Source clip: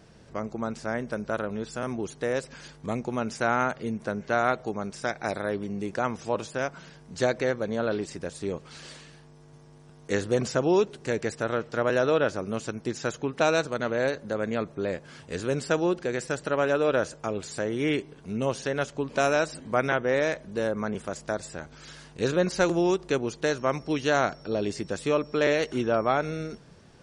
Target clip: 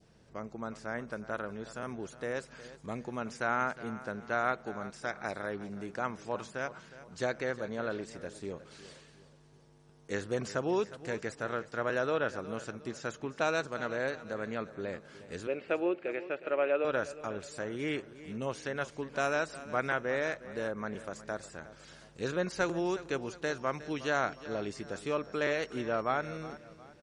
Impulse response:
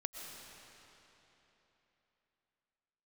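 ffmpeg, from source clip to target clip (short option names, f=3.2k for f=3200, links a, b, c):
-filter_complex "[0:a]asettb=1/sr,asplit=3[a][b][c];[a]atrim=end=15.474[d];[b]atrim=start=15.47:end=16.85,asetpts=PTS-STARTPTS,afade=t=in:d=0.004:c=qsin,afade=t=out:st=1.376:d=0.004:c=qsin,highpass=330,equalizer=f=340:t=q:w=4:g=6,equalizer=f=570:t=q:w=4:g=6,equalizer=f=1k:t=q:w=4:g=-5,equalizer=f=1.6k:t=q:w=4:g=-6,equalizer=f=2.5k:t=q:w=4:g=9,lowpass=f=2.9k:w=0.5412,lowpass=f=2.9k:w=1.3066[e];[c]atrim=start=16.846[f];[d][e]acrossfade=d=0.004:c1=hsin:c2=qsin[g];[g][f]acrossfade=d=0.004:c1=qsin:c2=hsin,aecho=1:1:362|724|1086|1448:0.168|0.0739|0.0325|0.0143,adynamicequalizer=threshold=0.0141:dfrequency=1500:dqfactor=0.99:tfrequency=1500:tqfactor=0.99:attack=5:release=100:ratio=0.375:range=2.5:mode=boostabove:tftype=bell,volume=-9dB"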